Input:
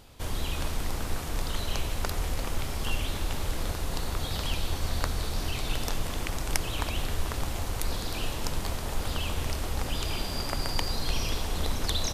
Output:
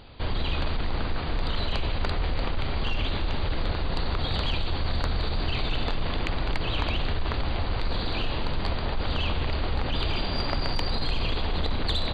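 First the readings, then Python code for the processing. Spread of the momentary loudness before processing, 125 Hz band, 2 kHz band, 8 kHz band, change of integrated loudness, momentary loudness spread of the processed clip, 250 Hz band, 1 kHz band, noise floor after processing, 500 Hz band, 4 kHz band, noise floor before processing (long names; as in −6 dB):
3 LU, +4.0 dB, +3.5 dB, below −20 dB, +3.0 dB, 2 LU, +4.0 dB, +3.5 dB, −29 dBFS, +4.0 dB, +3.0 dB, −34 dBFS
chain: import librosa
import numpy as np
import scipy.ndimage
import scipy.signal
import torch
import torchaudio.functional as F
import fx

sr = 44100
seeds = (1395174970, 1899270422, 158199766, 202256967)

p1 = fx.brickwall_lowpass(x, sr, high_hz=4800.0)
p2 = 10.0 ** (-19.0 / 20.0) * np.tanh(p1 / 10.0 ** (-19.0 / 20.0))
p3 = fx.over_compress(p2, sr, threshold_db=-30.0, ratio=-1.0)
y = p2 + F.gain(torch.from_numpy(p3), -2.5).numpy()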